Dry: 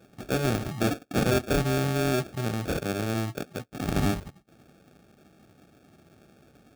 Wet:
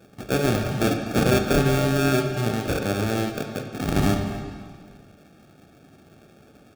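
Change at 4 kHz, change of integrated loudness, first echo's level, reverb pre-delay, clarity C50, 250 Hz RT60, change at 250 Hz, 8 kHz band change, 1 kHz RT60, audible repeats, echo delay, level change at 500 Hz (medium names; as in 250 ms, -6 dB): +4.5 dB, +4.5 dB, -18.0 dB, 25 ms, 5.5 dB, 1.9 s, +5.0 dB, +4.0 dB, 1.8 s, 1, 248 ms, +5.0 dB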